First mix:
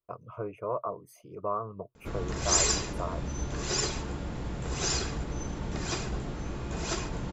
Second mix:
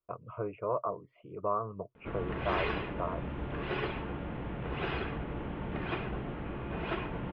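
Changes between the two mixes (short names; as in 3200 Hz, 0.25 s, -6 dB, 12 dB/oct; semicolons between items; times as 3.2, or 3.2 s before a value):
background: add low shelf 86 Hz -9 dB; master: add steep low-pass 3100 Hz 48 dB/oct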